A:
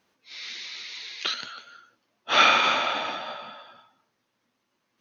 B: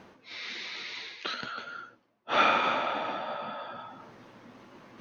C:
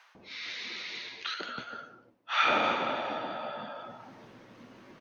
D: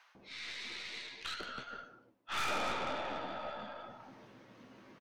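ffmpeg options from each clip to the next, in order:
-af "lowpass=f=1k:p=1,areverse,acompressor=mode=upward:threshold=-29dB:ratio=2.5,areverse"
-filter_complex "[0:a]acrossover=split=960[a][b];[a]adelay=150[c];[c][b]amix=inputs=2:normalize=0"
-filter_complex "[0:a]aeval=exprs='(tanh(31.6*val(0)+0.55)-tanh(0.55))/31.6':c=same,asplit=2[a][b];[b]adelay=15,volume=-11dB[c];[a][c]amix=inputs=2:normalize=0,volume=-2.5dB"

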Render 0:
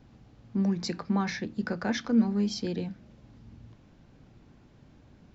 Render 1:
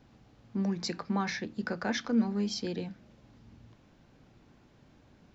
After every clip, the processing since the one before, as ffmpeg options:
-af "lowshelf=f=270:g=-6.5"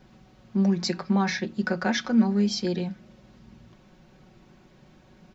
-af "aecho=1:1:5.4:0.65,volume=4.5dB"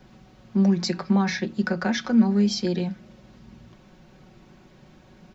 -filter_complex "[0:a]acrossover=split=280[a][b];[b]acompressor=threshold=-28dB:ratio=4[c];[a][c]amix=inputs=2:normalize=0,volume=3dB"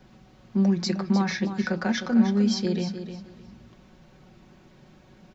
-af "aecho=1:1:307|614|921:0.316|0.0664|0.0139,volume=-2dB"

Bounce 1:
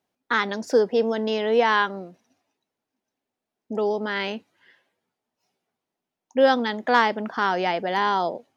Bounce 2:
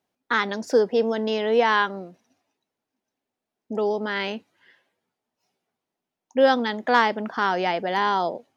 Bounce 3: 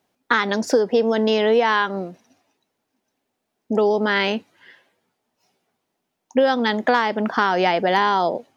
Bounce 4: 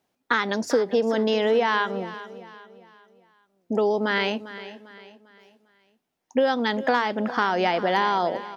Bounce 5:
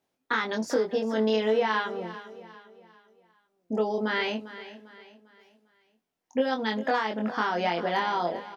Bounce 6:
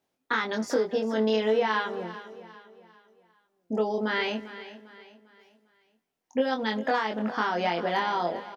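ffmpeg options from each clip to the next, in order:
-af anull
-af "acompressor=threshold=-22dB:ratio=10,volume=8.5dB"
-af "aecho=1:1:399|798|1197|1596:0.178|0.0711|0.0285|0.0114,volume=-4dB"
-filter_complex "[0:a]asplit=2[a][b];[b]adelay=23,volume=-3dB[c];[a][c]amix=inputs=2:normalize=0,volume=-6dB"
-filter_complex "[0:a]asplit=2[a][b];[b]adelay=230,highpass=300,lowpass=3.4k,asoftclip=type=hard:threshold=-21dB,volume=-22dB[c];[a][c]amix=inputs=2:normalize=0"

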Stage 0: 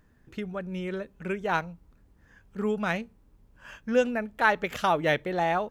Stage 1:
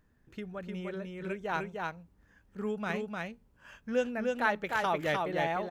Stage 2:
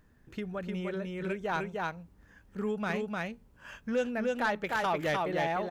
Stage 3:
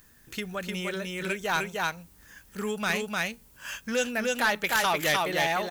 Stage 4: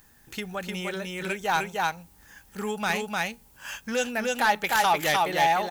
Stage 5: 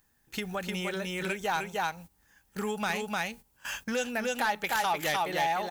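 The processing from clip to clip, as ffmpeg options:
-af "aecho=1:1:303:0.708,volume=-6.5dB"
-filter_complex "[0:a]asplit=2[a][b];[b]acompressor=threshold=-39dB:ratio=6,volume=-1.5dB[c];[a][c]amix=inputs=2:normalize=0,asoftclip=type=tanh:threshold=-21dB"
-af "crystalizer=i=10:c=0,asoftclip=type=tanh:threshold=-14.5dB"
-af "equalizer=f=820:w=5.8:g=10"
-af "agate=range=-14dB:threshold=-43dB:ratio=16:detection=peak,acompressor=threshold=-33dB:ratio=2,volume=1.5dB"

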